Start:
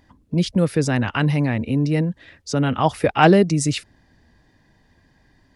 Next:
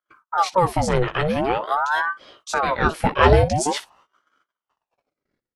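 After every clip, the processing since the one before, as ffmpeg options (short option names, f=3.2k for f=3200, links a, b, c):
-af "aecho=1:1:16|61:0.562|0.141,agate=range=-34dB:threshold=-52dB:ratio=16:detection=peak,aeval=exprs='val(0)*sin(2*PI*800*n/s+800*0.7/0.46*sin(2*PI*0.46*n/s))':c=same,volume=1dB"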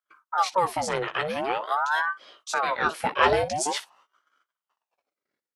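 -af "highpass=f=710:p=1,volume=-2dB"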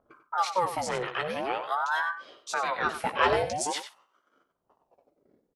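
-filter_complex "[0:a]acrossover=split=630|2500[a][b][c];[a]acompressor=mode=upward:threshold=-39dB:ratio=2.5[d];[d][b][c]amix=inputs=3:normalize=0,aecho=1:1:94:0.282,volume=-3.5dB"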